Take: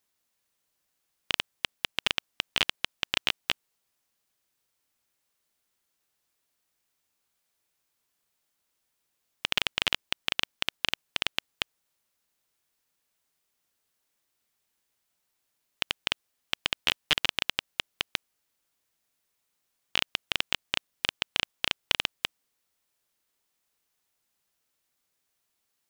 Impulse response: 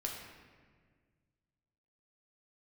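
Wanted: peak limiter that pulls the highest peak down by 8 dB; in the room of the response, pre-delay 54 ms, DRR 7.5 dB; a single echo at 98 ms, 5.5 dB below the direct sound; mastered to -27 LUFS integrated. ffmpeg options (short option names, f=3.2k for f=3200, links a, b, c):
-filter_complex "[0:a]alimiter=limit=-12.5dB:level=0:latency=1,aecho=1:1:98:0.531,asplit=2[a][b];[1:a]atrim=start_sample=2205,adelay=54[c];[b][c]afir=irnorm=-1:irlink=0,volume=-8.5dB[d];[a][d]amix=inputs=2:normalize=0,volume=9dB"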